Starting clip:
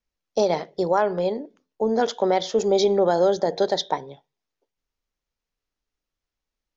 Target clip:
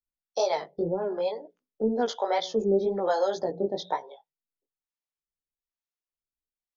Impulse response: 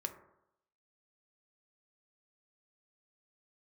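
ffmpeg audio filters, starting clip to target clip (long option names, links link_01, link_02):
-filter_complex "[0:a]acrossover=split=480[link_01][link_02];[link_01]aeval=exprs='val(0)*(1-1/2+1/2*cos(2*PI*1.1*n/s))':channel_layout=same[link_03];[link_02]aeval=exprs='val(0)*(1-1/2-1/2*cos(2*PI*1.1*n/s))':channel_layout=same[link_04];[link_03][link_04]amix=inputs=2:normalize=0,afftdn=noise_reduction=16:noise_floor=-48,asplit=2[link_05][link_06];[link_06]acompressor=threshold=-37dB:ratio=5,volume=2dB[link_07];[link_05][link_07]amix=inputs=2:normalize=0,bandreject=frequency=60:width_type=h:width=6,bandreject=frequency=120:width_type=h:width=6,bandreject=frequency=180:width_type=h:width=6,flanger=delay=16:depth=4.6:speed=2"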